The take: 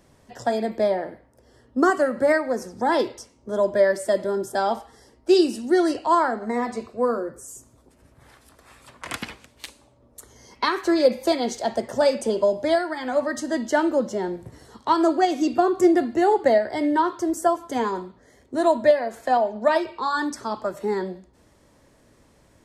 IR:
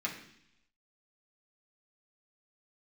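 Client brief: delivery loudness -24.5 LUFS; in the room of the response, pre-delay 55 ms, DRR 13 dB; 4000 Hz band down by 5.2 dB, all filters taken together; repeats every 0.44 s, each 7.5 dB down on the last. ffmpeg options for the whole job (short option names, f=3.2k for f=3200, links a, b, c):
-filter_complex "[0:a]equalizer=f=4k:t=o:g=-6.5,aecho=1:1:440|880|1320|1760|2200:0.422|0.177|0.0744|0.0312|0.0131,asplit=2[a][b];[1:a]atrim=start_sample=2205,adelay=55[c];[b][c]afir=irnorm=-1:irlink=0,volume=-17dB[d];[a][d]amix=inputs=2:normalize=0,volume=-2.5dB"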